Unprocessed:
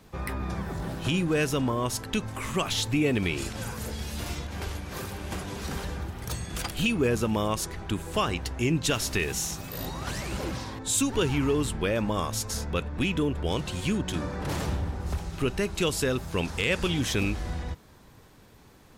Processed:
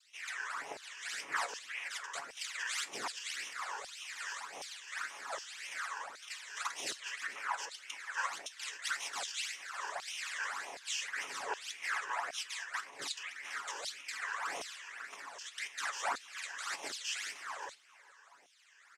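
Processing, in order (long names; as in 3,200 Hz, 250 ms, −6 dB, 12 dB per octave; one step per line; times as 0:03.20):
bass and treble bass −9 dB, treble −9 dB
brickwall limiter −25.5 dBFS, peak gain reduction 11.5 dB
cochlear-implant simulation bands 3
all-pass phaser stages 12, 1.8 Hz, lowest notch 210–1,500 Hz
tuned comb filter 140 Hz, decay 0.19 s, harmonics all, mix 60%
auto-filter high-pass saw down 1.3 Hz 660–4,000 Hz
single-tap delay 426 ms −22.5 dB
level +4.5 dB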